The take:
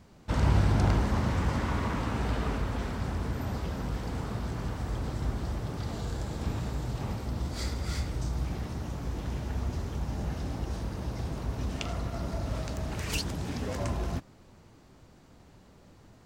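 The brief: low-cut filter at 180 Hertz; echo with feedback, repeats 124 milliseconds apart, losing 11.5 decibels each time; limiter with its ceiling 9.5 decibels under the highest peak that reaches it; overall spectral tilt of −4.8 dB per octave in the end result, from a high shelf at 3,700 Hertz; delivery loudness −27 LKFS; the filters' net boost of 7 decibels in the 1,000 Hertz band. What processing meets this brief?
high-pass filter 180 Hz
parametric band 1,000 Hz +9 dB
high-shelf EQ 3,700 Hz −5.5 dB
brickwall limiter −25 dBFS
repeating echo 124 ms, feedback 27%, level −11.5 dB
level +9 dB

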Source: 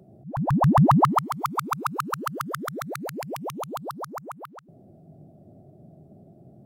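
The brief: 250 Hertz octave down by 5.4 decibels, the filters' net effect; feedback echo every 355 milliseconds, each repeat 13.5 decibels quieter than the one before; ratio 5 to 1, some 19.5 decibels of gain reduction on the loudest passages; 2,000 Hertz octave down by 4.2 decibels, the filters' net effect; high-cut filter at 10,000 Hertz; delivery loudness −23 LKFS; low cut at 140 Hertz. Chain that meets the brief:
high-pass filter 140 Hz
low-pass filter 10,000 Hz
parametric band 250 Hz −6.5 dB
parametric band 2,000 Hz −6 dB
downward compressor 5 to 1, threshold −38 dBFS
repeating echo 355 ms, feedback 21%, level −13.5 dB
level +18.5 dB

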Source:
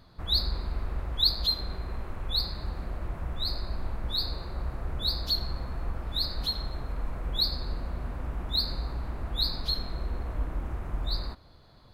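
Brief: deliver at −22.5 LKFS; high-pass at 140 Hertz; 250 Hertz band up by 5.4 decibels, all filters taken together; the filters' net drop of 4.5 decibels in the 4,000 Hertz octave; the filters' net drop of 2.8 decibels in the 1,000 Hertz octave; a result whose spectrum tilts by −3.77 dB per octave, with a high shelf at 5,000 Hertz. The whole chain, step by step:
high-pass filter 140 Hz
parametric band 250 Hz +8 dB
parametric band 1,000 Hz −4 dB
parametric band 4,000 Hz −7 dB
high-shelf EQ 5,000 Hz +5.5 dB
level +13 dB

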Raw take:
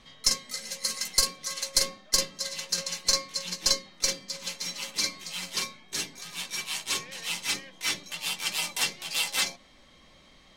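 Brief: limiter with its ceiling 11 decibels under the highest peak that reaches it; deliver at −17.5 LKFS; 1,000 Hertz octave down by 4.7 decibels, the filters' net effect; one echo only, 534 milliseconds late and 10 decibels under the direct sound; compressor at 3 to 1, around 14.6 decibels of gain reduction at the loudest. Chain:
parametric band 1,000 Hz −5.5 dB
downward compressor 3 to 1, threshold −40 dBFS
brickwall limiter −32 dBFS
single-tap delay 534 ms −10 dB
level +25 dB

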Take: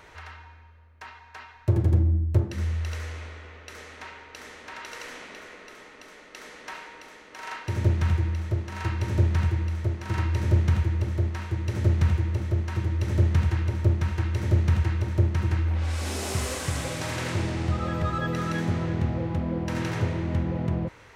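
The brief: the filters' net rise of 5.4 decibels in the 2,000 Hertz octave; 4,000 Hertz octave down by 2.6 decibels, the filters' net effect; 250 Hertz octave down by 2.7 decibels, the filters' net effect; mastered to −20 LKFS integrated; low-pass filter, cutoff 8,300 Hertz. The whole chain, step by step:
low-pass filter 8,300 Hz
parametric band 250 Hz −4.5 dB
parametric band 2,000 Hz +8 dB
parametric band 4,000 Hz −6.5 dB
level +7 dB

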